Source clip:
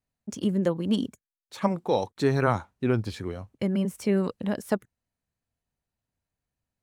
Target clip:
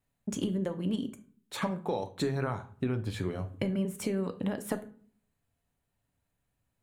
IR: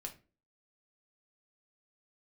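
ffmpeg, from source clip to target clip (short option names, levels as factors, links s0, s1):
-filter_complex "[0:a]acompressor=threshold=0.02:ratio=12,asplit=2[s0][s1];[s1]asuperstop=centerf=5300:order=12:qfactor=5.2[s2];[1:a]atrim=start_sample=2205,asetrate=29547,aresample=44100[s3];[s2][s3]afir=irnorm=-1:irlink=0,volume=1.19[s4];[s0][s4]amix=inputs=2:normalize=0"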